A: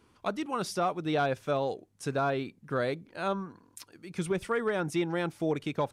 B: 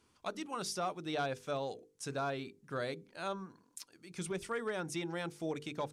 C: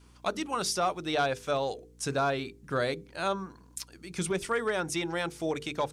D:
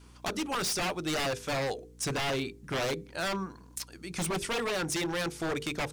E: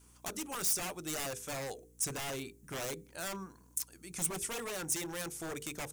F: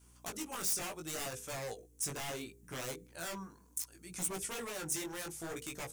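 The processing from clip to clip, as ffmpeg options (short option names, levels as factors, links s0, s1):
-af "equalizer=f=6900:t=o:w=1.9:g=8.5,bandreject=f=50:t=h:w=6,bandreject=f=100:t=h:w=6,bandreject=f=150:t=h:w=6,bandreject=f=200:t=h:w=6,bandreject=f=250:t=h:w=6,bandreject=f=300:t=h:w=6,bandreject=f=350:t=h:w=6,bandreject=f=400:t=h:w=6,bandreject=f=450:t=h:w=6,bandreject=f=500:t=h:w=6,volume=0.398"
-af "adynamicequalizer=threshold=0.00224:dfrequency=190:dqfactor=0.71:tfrequency=190:tqfactor=0.71:attack=5:release=100:ratio=0.375:range=3:mode=cutabove:tftype=bell,aeval=exprs='val(0)+0.000562*(sin(2*PI*60*n/s)+sin(2*PI*2*60*n/s)/2+sin(2*PI*3*60*n/s)/3+sin(2*PI*4*60*n/s)/4+sin(2*PI*5*60*n/s)/5)':c=same,volume=2.82"
-af "aeval=exprs='0.0376*(abs(mod(val(0)/0.0376+3,4)-2)-1)':c=same,volume=1.41"
-af "aexciter=amount=3.4:drive=7.2:freq=6200,volume=0.355"
-af "flanger=delay=15.5:depth=5.1:speed=0.69,volume=1.12"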